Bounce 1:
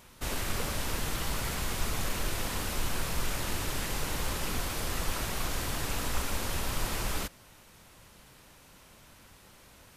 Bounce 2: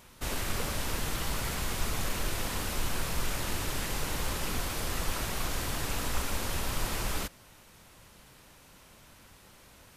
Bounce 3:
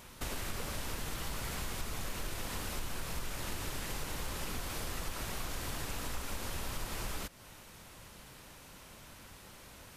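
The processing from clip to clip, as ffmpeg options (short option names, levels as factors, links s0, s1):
-af anull
-af "acompressor=threshold=0.01:ratio=3,volume=1.33"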